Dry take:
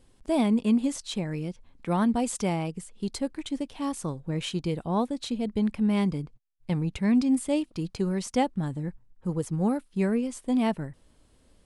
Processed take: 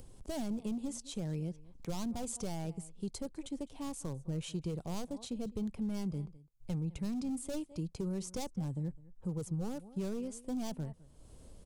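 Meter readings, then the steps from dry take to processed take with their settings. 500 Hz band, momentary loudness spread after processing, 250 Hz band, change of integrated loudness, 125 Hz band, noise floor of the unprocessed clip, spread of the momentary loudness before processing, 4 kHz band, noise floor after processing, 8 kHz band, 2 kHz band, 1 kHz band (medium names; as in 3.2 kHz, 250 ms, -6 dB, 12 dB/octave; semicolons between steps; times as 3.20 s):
-12.0 dB, 6 LU, -12.0 dB, -11.5 dB, -7.5 dB, -61 dBFS, 11 LU, -10.5 dB, -59 dBFS, -6.0 dB, -16.5 dB, -15.5 dB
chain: upward compressor, threshold -37 dBFS; three-band isolator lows -15 dB, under 390 Hz, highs -20 dB, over 2.3 kHz; delay 207 ms -22.5 dB; hard clipper -31.5 dBFS, distortion -7 dB; FFT filter 160 Hz 0 dB, 250 Hz -10 dB, 1.8 kHz -25 dB, 6.5 kHz +2 dB; compression, threshold -44 dBFS, peak gain reduction 5.5 dB; trim +11.5 dB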